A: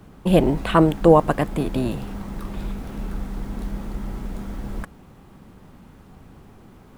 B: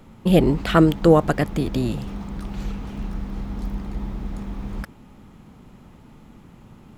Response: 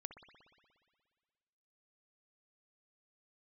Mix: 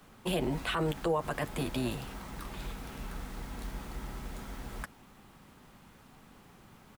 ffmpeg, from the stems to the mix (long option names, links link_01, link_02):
-filter_complex "[0:a]highpass=frequency=1500:poles=1,volume=-0.5dB[link_01];[1:a]volume=-1,adelay=8.7,volume=-12.5dB[link_02];[link_01][link_02]amix=inputs=2:normalize=0,alimiter=limit=-22dB:level=0:latency=1:release=55"